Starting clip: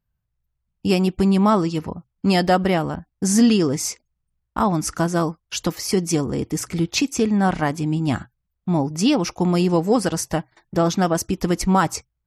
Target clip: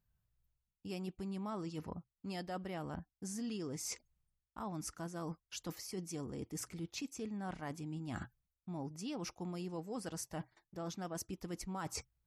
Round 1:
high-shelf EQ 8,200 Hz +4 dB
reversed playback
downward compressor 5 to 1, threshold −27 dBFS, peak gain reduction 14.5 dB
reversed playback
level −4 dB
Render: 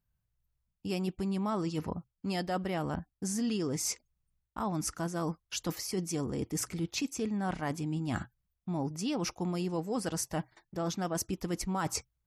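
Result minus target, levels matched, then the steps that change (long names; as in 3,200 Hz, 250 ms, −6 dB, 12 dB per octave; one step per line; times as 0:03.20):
downward compressor: peak gain reduction −9 dB
change: downward compressor 5 to 1, threshold −38.5 dBFS, peak gain reduction 23.5 dB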